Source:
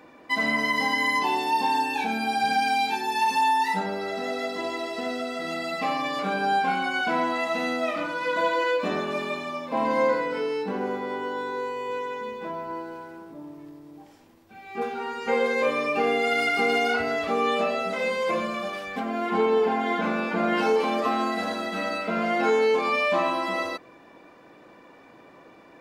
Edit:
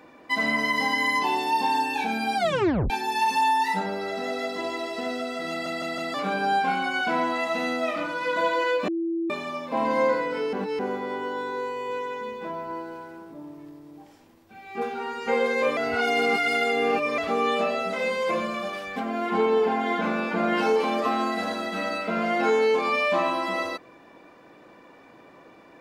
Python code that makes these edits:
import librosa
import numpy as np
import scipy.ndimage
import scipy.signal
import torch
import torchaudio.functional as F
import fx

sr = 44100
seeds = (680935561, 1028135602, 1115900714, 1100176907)

y = fx.edit(x, sr, fx.tape_stop(start_s=2.37, length_s=0.53),
    fx.stutter_over(start_s=5.5, slice_s=0.16, count=4),
    fx.bleep(start_s=8.88, length_s=0.42, hz=333.0, db=-24.0),
    fx.reverse_span(start_s=10.53, length_s=0.26),
    fx.reverse_span(start_s=15.77, length_s=1.41), tone=tone)